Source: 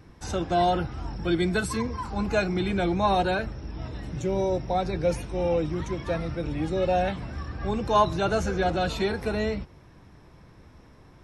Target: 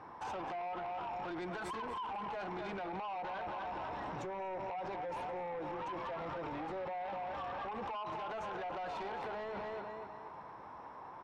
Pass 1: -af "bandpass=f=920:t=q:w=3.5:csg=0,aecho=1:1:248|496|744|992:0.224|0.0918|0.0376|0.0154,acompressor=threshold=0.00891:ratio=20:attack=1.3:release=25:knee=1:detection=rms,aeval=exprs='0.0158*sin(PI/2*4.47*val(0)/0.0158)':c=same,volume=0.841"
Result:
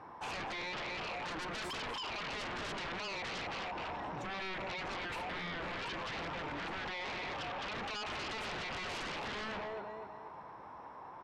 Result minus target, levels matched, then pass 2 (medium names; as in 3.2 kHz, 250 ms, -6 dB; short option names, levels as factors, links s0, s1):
compression: peak gain reduction -8 dB
-af "bandpass=f=920:t=q:w=3.5:csg=0,aecho=1:1:248|496|744|992:0.224|0.0918|0.0376|0.0154,acompressor=threshold=0.00335:ratio=20:attack=1.3:release=25:knee=1:detection=rms,aeval=exprs='0.0158*sin(PI/2*4.47*val(0)/0.0158)':c=same,volume=0.841"